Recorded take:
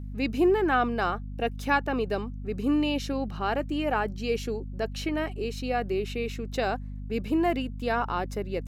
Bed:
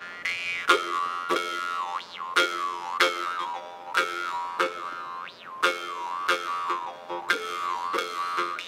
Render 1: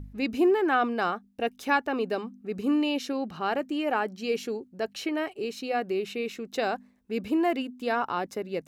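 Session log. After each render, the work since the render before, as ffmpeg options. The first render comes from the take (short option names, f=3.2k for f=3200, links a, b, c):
-af "bandreject=f=50:t=h:w=4,bandreject=f=100:t=h:w=4,bandreject=f=150:t=h:w=4,bandreject=f=200:t=h:w=4,bandreject=f=250:t=h:w=4"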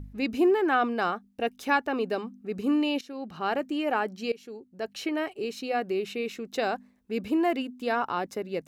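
-filter_complex "[0:a]asplit=3[a][b][c];[a]atrim=end=3.01,asetpts=PTS-STARTPTS,afade=t=out:st=3.006:d=0.004:c=hsin:silence=0.149624[d];[b]atrim=start=3.01:end=4.32,asetpts=PTS-STARTPTS,afade=t=in:d=0.46:silence=0.149624,afade=t=out:st=1.306:d=0.004:c=hsin:silence=0.1[e];[c]atrim=start=4.32,asetpts=PTS-STARTPTS,afade=t=in:d=0.75:silence=0.1[f];[d][e][f]concat=n=3:v=0:a=1"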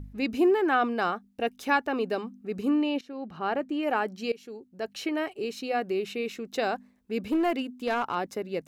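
-filter_complex "[0:a]asettb=1/sr,asplit=3[a][b][c];[a]atrim=end=2.694[d];[b]atrim=start=2.69:end=3.83,asetpts=PTS-STARTPTS,afade=t=in:d=0.004:c=qsin,afade=t=out:st=1.136:d=0.004:c=qsin,highshelf=f=3.8k:g=-11[e];[c]atrim=start=3.826[f];[d][e]acrossfade=d=0.004:c1=hsin:c2=qsin[g];[g][f]acrossfade=d=0.004:c1=qsin:c2=hsin,asplit=3[h][i][j];[h]afade=t=out:st=7.21:d=0.02[k];[i]aeval=exprs='clip(val(0),-1,0.0794)':c=same,afade=t=in:st=7.21:d=0.02,afade=t=out:st=8.14:d=0.02[l];[j]afade=t=in:st=8.14:d=0.02[m];[k][l][m]amix=inputs=3:normalize=0"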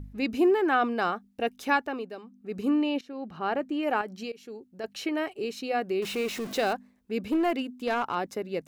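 -filter_complex "[0:a]asettb=1/sr,asplit=3[a][b][c];[a]atrim=end=4.014[d];[b]atrim=start=4.01:end=4.84,asetpts=PTS-STARTPTS,afade=t=in:d=0.004:c=qsin,afade=t=out:st=0.826:d=0.004:c=qsin,acompressor=threshold=-32dB:ratio=4:attack=3.2:release=140:knee=1:detection=peak[e];[c]atrim=start=4.836[f];[d][e]acrossfade=d=0.004:c1=hsin:c2=qsin[g];[g][f]acrossfade=d=0.004:c1=qsin:c2=hsin,asettb=1/sr,asplit=3[h][i][j];[h]atrim=end=6.024[k];[i]atrim=start=6.02:end=6.73,asetpts=PTS-STARTPTS,afade=t=in:d=0.004:c=qsin,afade=t=out:st=0.706:d=0.004:c=qsin,aeval=exprs='val(0)+0.5*0.0188*sgn(val(0))':c=same[l];[j]atrim=start=6.726[m];[k][l]acrossfade=d=0.004:c1=hsin:c2=qsin[n];[n][m]acrossfade=d=0.004:c1=qsin:c2=hsin,asplit=3[o][p][q];[o]atrim=end=2.1,asetpts=PTS-STARTPTS,afade=t=out:st=1.73:d=0.37:silence=0.281838[r];[p]atrim=start=2.1:end=2.26,asetpts=PTS-STARTPTS,volume=-11dB[s];[q]atrim=start=2.26,asetpts=PTS-STARTPTS,afade=t=in:d=0.37:silence=0.281838[t];[r][s][t]concat=n=3:v=0:a=1"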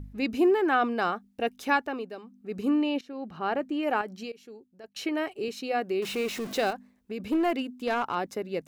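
-filter_complex "[0:a]asettb=1/sr,asplit=3[a][b][c];[a]atrim=end=5.484[d];[b]atrim=start=5.48:end=6.09,asetpts=PTS-STARTPTS,afade=t=in:d=0.004:c=qsin,afade=t=out:st=0.606:d=0.004:c=qsin,highpass=150[e];[c]atrim=start=6.086[f];[d][e]acrossfade=d=0.004:c1=hsin:c2=qsin[g];[g][f]acrossfade=d=0.004:c1=qsin:c2=hsin,asettb=1/sr,asplit=3[h][i][j];[h]atrim=end=6.704[k];[i]atrim=start=6.7:end=7.2,asetpts=PTS-STARTPTS,afade=t=in:d=0.004:c=qsin,afade=t=out:st=0.496:d=0.004:c=qsin,acompressor=threshold=-30dB:ratio=6:attack=3.2:release=140:knee=1:detection=peak[l];[j]atrim=start=7.196[m];[k][l]acrossfade=d=0.004:c1=hsin:c2=qsin[n];[n][m]acrossfade=d=0.004:c1=qsin:c2=hsin,asplit=2[o][p];[o]atrim=end=4.96,asetpts=PTS-STARTPTS,afade=t=out:st=4.09:d=0.87:silence=0.158489[q];[p]atrim=start=4.96,asetpts=PTS-STARTPTS,afade=t=in:d=0.004:c=hsin:silence=0.158489[r];[q][r]concat=n=2:v=0:a=1"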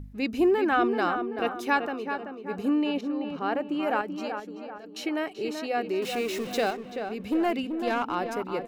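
-filter_complex "[0:a]asplit=2[a][b];[b]adelay=384,lowpass=f=2k:p=1,volume=-6.5dB,asplit=2[c][d];[d]adelay=384,lowpass=f=2k:p=1,volume=0.48,asplit=2[e][f];[f]adelay=384,lowpass=f=2k:p=1,volume=0.48,asplit=2[g][h];[h]adelay=384,lowpass=f=2k:p=1,volume=0.48,asplit=2[i][j];[j]adelay=384,lowpass=f=2k:p=1,volume=0.48,asplit=2[k][l];[l]adelay=384,lowpass=f=2k:p=1,volume=0.48[m];[a][c][e][g][i][k][m]amix=inputs=7:normalize=0"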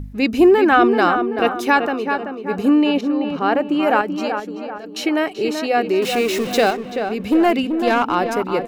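-af "volume=10.5dB,alimiter=limit=-3dB:level=0:latency=1"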